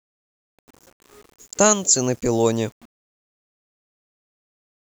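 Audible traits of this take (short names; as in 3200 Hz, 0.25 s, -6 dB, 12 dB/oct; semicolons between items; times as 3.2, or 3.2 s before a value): a quantiser's noise floor 8-bit, dither none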